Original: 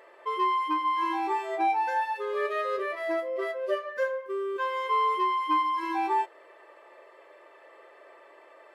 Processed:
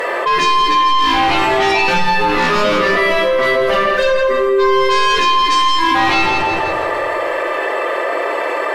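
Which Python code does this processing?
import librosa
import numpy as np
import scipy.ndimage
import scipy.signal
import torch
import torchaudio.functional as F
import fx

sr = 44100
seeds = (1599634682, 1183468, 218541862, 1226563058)

p1 = fx.highpass(x, sr, hz=440.0, slope=12, at=(2.95, 3.95))
p2 = fx.fold_sine(p1, sr, drive_db=13, ceiling_db=-16.0)
p3 = p1 + (p2 * librosa.db_to_amplitude(-3.5))
p4 = fx.echo_feedback(p3, sr, ms=163, feedback_pct=45, wet_db=-9.5)
p5 = fx.room_shoebox(p4, sr, seeds[0], volume_m3=470.0, walls='mixed', distance_m=1.9)
p6 = fx.env_flatten(p5, sr, amount_pct=70)
y = p6 * librosa.db_to_amplitude(-3.0)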